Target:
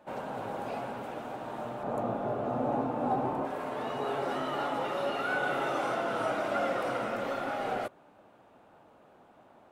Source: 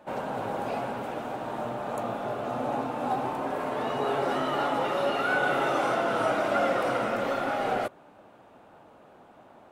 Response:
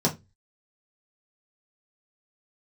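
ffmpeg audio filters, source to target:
-filter_complex "[0:a]asettb=1/sr,asplit=3[a][b][c];[a]atrim=end=1.834[d];[b]atrim=start=1.83:end=3.45,asetpts=PTS-STARTPTS,afade=t=in:d=0.004:c=qsin,afade=t=out:st=1.616:d=0.004:c=qsin,tiltshelf=f=1.4k:g=7[e];[c]atrim=start=3.446[f];[d][e]acrossfade=d=0.004:c1=hsin:c2=qsin[g];[g][f]acrossfade=d=0.004:c1=qsin:c2=hsin,volume=-5dB"

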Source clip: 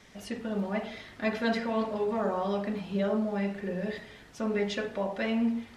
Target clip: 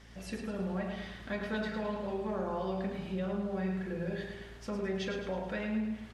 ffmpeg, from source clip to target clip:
-filter_complex "[0:a]acompressor=threshold=-32dB:ratio=2.5,aeval=exprs='val(0)+0.002*(sin(2*PI*60*n/s)+sin(2*PI*2*60*n/s)/2+sin(2*PI*3*60*n/s)/3+sin(2*PI*4*60*n/s)/4+sin(2*PI*5*60*n/s)/5)':c=same,asetrate=41454,aresample=44100,asplit=2[a][b];[b]adelay=37,volume=-13dB[c];[a][c]amix=inputs=2:normalize=0,asplit=2[d][e];[e]aecho=0:1:107|214|321|428|535|642:0.447|0.219|0.107|0.0526|0.0258|0.0126[f];[d][f]amix=inputs=2:normalize=0,volume=-2.5dB"

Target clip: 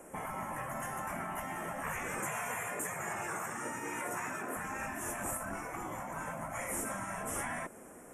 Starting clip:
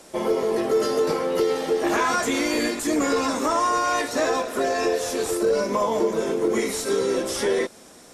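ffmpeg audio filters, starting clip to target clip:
-filter_complex "[0:a]asettb=1/sr,asplit=3[a][b][c];[a]atrim=end=2.194[d];[b]atrim=start=2.19:end=4.57,asetpts=PTS-STARTPTS,afade=t=in:d=0.004:c=qsin,afade=t=out:st=2.376:d=0.004:c=qsin,highpass=f=100:w=0.5412,highpass=f=100:w=1.3066[e];[c]atrim=start=4.566[f];[d][e]acrossfade=d=0.004:c1=hsin:c2=qsin[g];[g][f]acrossfade=d=0.004:c1=qsin:c2=hsin,afftfilt=real='re*lt(hypot(re,im),0.126)':imag='im*lt(hypot(re,im),0.126)':win_size=1024:overlap=0.75,asuperstop=centerf=4300:order=4:qfactor=0.67,volume=-3dB"

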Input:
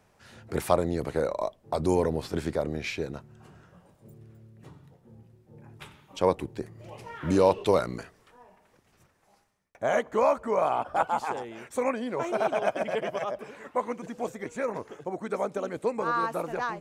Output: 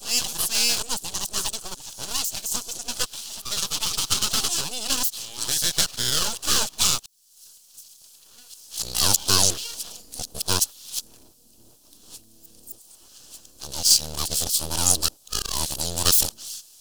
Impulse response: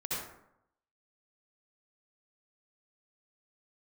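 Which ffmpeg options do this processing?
-af "areverse,aeval=exprs='abs(val(0))':c=same,bandreject=f=3.7k:w=21,aexciter=amount=14.8:drive=8.3:freq=3.3k,volume=-2.5dB"

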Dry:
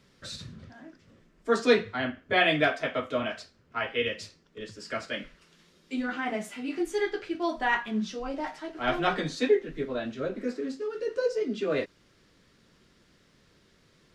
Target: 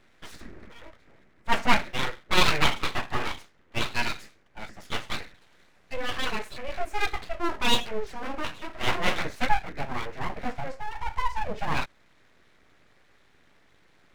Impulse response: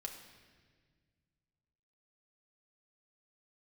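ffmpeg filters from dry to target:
-af "highshelf=f=2.6k:t=q:w=3:g=-8,aeval=exprs='abs(val(0))':c=same,volume=3dB"

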